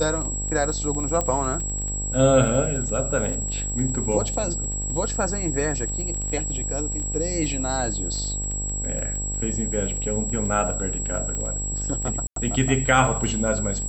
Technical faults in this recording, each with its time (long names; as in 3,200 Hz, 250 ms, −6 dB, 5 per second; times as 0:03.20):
mains buzz 50 Hz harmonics 19 −30 dBFS
surface crackle 20 per second −29 dBFS
whistle 7,700 Hz −28 dBFS
0:01.21: click −11 dBFS
0:11.35: click −18 dBFS
0:12.27–0:12.36: drop-out 93 ms